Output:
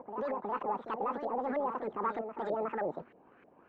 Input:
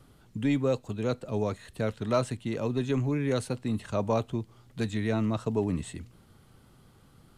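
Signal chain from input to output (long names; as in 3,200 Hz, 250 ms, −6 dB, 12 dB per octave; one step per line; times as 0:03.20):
spectral magnitudes quantised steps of 15 dB
high-pass filter 280 Hz 6 dB per octave
high-shelf EQ 2,800 Hz −8.5 dB
notch filter 2,600 Hz, Q 6.9
leveller curve on the samples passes 1
brickwall limiter −32.5 dBFS, peak gain reduction 15.5 dB
backwards echo 728 ms −7.5 dB
wrong playback speed 7.5 ips tape played at 15 ips
auto-filter low-pass saw up 3.2 Hz 570–2,000 Hz
level +2 dB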